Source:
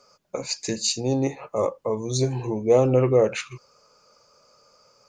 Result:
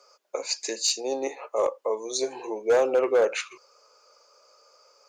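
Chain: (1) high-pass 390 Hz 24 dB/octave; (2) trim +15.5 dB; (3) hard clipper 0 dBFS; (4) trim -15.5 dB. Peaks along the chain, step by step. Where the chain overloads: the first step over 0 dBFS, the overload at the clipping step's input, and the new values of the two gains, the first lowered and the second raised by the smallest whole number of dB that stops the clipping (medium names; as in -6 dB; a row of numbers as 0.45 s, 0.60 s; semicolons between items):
-8.5 dBFS, +7.0 dBFS, 0.0 dBFS, -15.5 dBFS; step 2, 7.0 dB; step 2 +8.5 dB, step 4 -8.5 dB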